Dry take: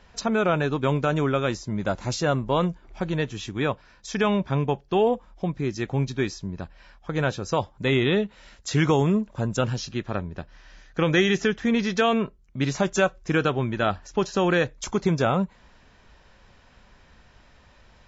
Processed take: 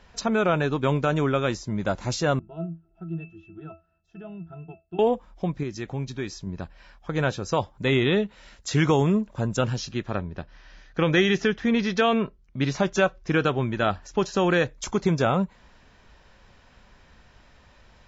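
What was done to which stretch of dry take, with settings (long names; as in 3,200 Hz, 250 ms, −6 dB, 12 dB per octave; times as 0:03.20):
0:02.39–0:04.99: resonances in every octave E, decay 0.23 s
0:05.63–0:06.47: downward compressor 1.5 to 1, threshold −36 dBFS
0:10.18–0:13.45: low-pass filter 6,000 Hz 24 dB per octave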